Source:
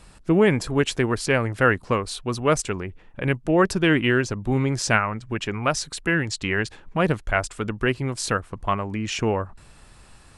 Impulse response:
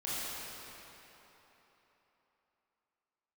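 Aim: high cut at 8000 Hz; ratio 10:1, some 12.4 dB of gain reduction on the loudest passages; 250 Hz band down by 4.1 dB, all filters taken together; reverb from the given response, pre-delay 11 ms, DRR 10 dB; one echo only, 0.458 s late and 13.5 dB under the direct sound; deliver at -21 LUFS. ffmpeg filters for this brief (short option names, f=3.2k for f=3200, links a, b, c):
-filter_complex "[0:a]lowpass=8k,equalizer=f=250:t=o:g=-6,acompressor=threshold=-27dB:ratio=10,aecho=1:1:458:0.211,asplit=2[a][b];[1:a]atrim=start_sample=2205,adelay=11[c];[b][c]afir=irnorm=-1:irlink=0,volume=-15.5dB[d];[a][d]amix=inputs=2:normalize=0,volume=11dB"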